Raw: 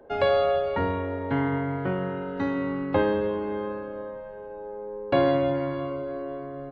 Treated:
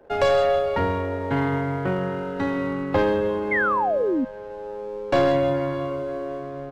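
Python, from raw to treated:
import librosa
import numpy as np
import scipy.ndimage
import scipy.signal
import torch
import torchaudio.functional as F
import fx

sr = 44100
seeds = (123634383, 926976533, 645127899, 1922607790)

y = fx.tracing_dist(x, sr, depth_ms=0.072)
y = fx.peak_eq(y, sr, hz=250.0, db=-3.5, octaves=0.47)
y = fx.leveller(y, sr, passes=1)
y = fx.spec_paint(y, sr, seeds[0], shape='fall', start_s=3.51, length_s=0.74, low_hz=240.0, high_hz=2200.0, level_db=-22.0)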